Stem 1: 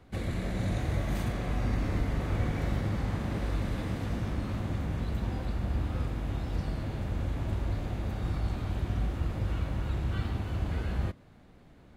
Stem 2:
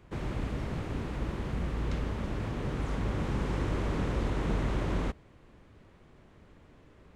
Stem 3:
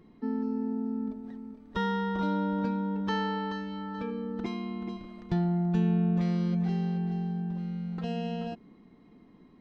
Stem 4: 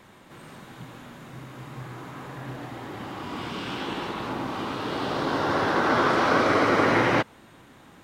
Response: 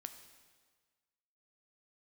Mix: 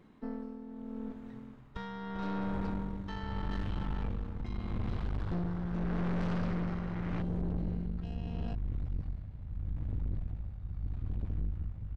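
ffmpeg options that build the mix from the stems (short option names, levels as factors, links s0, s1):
-filter_complex "[0:a]aemphasis=mode=reproduction:type=75kf,adelay=2400,volume=0.316[s0];[1:a]alimiter=level_in=1.41:limit=0.0631:level=0:latency=1,volume=0.708,adelay=2300,volume=0.211[s1];[2:a]volume=0.944[s2];[3:a]lowpass=f=2200:p=1,volume=0.266[s3];[s0][s1][s2][s3]amix=inputs=4:normalize=0,asubboost=boost=7:cutoff=120,tremolo=f=0.8:d=0.66,aeval=exprs='(tanh(35.5*val(0)+0.65)-tanh(0.65))/35.5':c=same"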